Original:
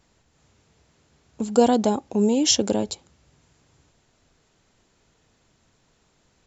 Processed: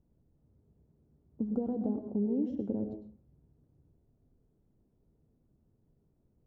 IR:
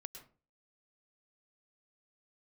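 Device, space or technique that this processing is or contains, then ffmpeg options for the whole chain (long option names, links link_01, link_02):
television next door: -filter_complex "[0:a]acompressor=threshold=-22dB:ratio=4,lowpass=330[link_01];[1:a]atrim=start_sample=2205[link_02];[link_01][link_02]afir=irnorm=-1:irlink=0,volume=1.5dB"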